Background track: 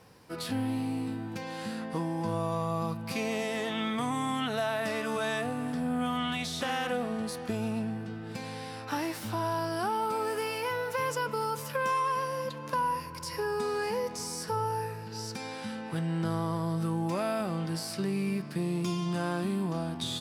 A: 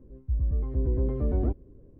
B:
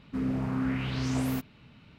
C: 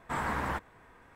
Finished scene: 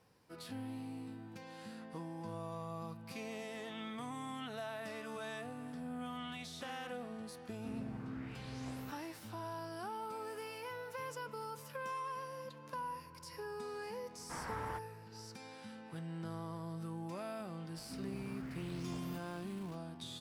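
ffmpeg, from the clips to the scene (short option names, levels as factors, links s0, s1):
-filter_complex "[2:a]asplit=2[s0][s1];[0:a]volume=0.224[s2];[s1]aeval=exprs='val(0)+0.5*0.015*sgn(val(0))':c=same[s3];[s0]atrim=end=1.98,asetpts=PTS-STARTPTS,volume=0.158,afade=t=in:d=0.004:c=hsin,afade=t=out:st=1.976:d=0.004:c=hsin,adelay=7510[s4];[3:a]atrim=end=1.15,asetpts=PTS-STARTPTS,volume=0.251,afade=t=in:d=0.004:c=hsin,afade=t=out:st=1.146:d=0.004:c=hsin,adelay=14200[s5];[s3]atrim=end=1.98,asetpts=PTS-STARTPTS,volume=0.133,afade=t=in:d=0.004:c=hsin,afade=t=out:st=1.976:d=0.004:c=hsin,adelay=17770[s6];[s2][s4][s5][s6]amix=inputs=4:normalize=0"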